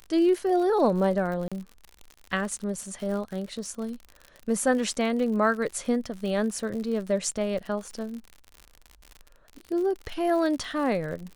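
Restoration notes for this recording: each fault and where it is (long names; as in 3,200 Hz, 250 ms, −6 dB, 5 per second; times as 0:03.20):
surface crackle 71 per second −34 dBFS
0:01.48–0:01.52: drop-out 36 ms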